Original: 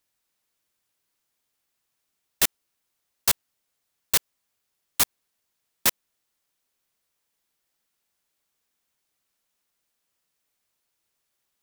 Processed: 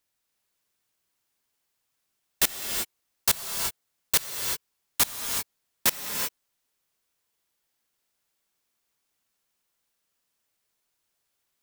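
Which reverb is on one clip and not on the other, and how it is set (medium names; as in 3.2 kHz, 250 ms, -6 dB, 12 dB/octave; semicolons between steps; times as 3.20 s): gated-style reverb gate 400 ms rising, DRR 3 dB; trim -1.5 dB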